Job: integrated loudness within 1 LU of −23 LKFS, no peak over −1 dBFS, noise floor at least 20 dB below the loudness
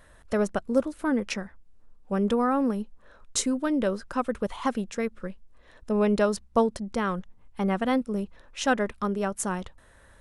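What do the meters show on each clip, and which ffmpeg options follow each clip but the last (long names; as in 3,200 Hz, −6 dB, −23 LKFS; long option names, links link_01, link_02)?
integrated loudness −28.0 LKFS; sample peak −10.5 dBFS; target loudness −23.0 LKFS
→ -af "volume=5dB"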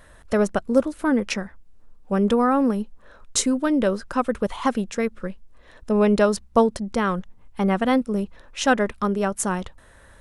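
integrated loudness −23.0 LKFS; sample peak −5.5 dBFS; background noise floor −50 dBFS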